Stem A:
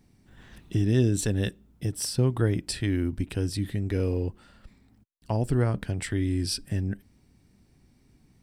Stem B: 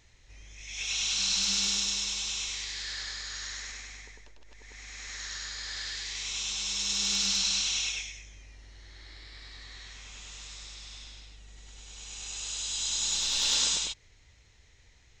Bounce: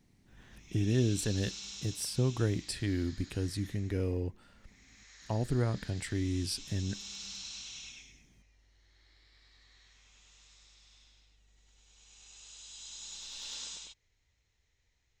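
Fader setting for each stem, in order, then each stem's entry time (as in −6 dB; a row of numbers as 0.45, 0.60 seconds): −6.0, −16.0 decibels; 0.00, 0.00 seconds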